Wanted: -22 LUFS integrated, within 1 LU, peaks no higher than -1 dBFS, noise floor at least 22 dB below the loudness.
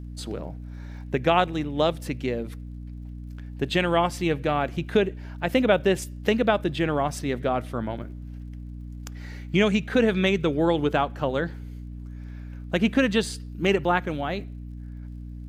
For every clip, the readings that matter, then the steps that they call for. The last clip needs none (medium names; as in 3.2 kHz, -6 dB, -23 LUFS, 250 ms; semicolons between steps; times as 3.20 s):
tick rate 42 per s; hum 60 Hz; highest harmonic 300 Hz; hum level -35 dBFS; loudness -25.0 LUFS; peak level -6.0 dBFS; loudness target -22.0 LUFS
-> de-click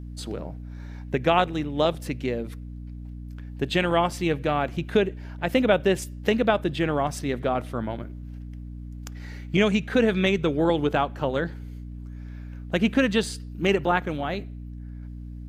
tick rate 0.13 per s; hum 60 Hz; highest harmonic 300 Hz; hum level -35 dBFS
-> de-hum 60 Hz, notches 5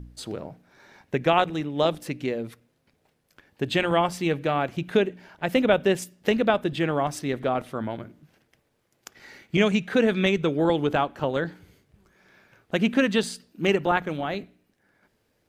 hum not found; loudness -25.0 LUFS; peak level -6.5 dBFS; loudness target -22.0 LUFS
-> trim +3 dB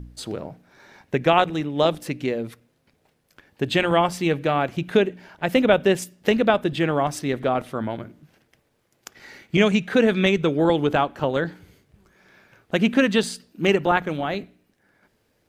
loudness -22.0 LUFS; peak level -3.5 dBFS; noise floor -68 dBFS